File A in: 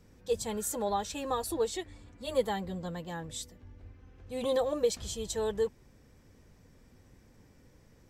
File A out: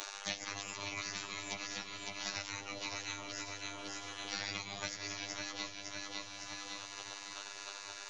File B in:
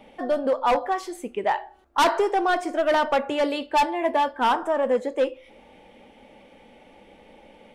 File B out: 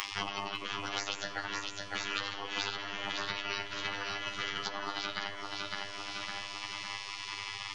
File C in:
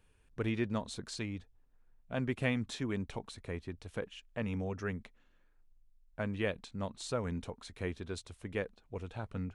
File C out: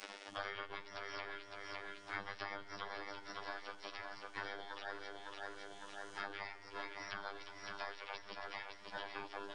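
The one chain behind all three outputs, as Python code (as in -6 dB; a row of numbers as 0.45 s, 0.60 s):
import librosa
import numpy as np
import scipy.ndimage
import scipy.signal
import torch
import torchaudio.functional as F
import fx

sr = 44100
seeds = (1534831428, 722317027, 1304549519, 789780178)

p1 = fx.partial_stretch(x, sr, pct=82)
p2 = fx.graphic_eq_31(p1, sr, hz=(160, 400, 1250, 2000, 3150, 6300), db=(5, -11, -3, -8, 11, 6))
p3 = fx.over_compress(p2, sr, threshold_db=-32.0, ratio=-1.0)
p4 = fx.spec_gate(p3, sr, threshold_db=-25, keep='weak')
p5 = fx.robotise(p4, sr, hz=100.0)
p6 = p5 + fx.echo_feedback(p5, sr, ms=557, feedback_pct=33, wet_db=-8.5, dry=0)
p7 = fx.room_shoebox(p6, sr, seeds[0], volume_m3=2300.0, walls='mixed', distance_m=0.48)
p8 = fx.band_squash(p7, sr, depth_pct=100)
y = F.gain(torch.from_numpy(p8), 14.5).numpy()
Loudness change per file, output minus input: -7.5 LU, -13.0 LU, -8.0 LU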